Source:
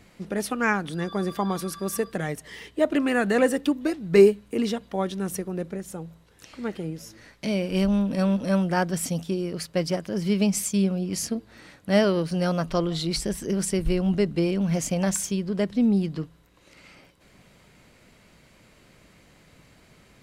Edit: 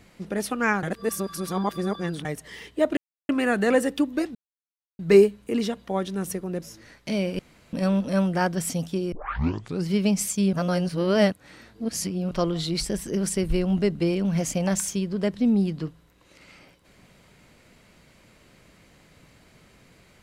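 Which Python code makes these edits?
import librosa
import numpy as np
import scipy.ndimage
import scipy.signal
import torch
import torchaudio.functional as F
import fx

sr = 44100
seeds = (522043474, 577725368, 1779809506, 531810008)

y = fx.edit(x, sr, fx.reverse_span(start_s=0.83, length_s=1.42),
    fx.insert_silence(at_s=2.97, length_s=0.32),
    fx.insert_silence(at_s=4.03, length_s=0.64),
    fx.cut(start_s=5.66, length_s=1.32),
    fx.room_tone_fill(start_s=7.75, length_s=0.34),
    fx.tape_start(start_s=9.48, length_s=0.76),
    fx.reverse_span(start_s=10.89, length_s=1.78), tone=tone)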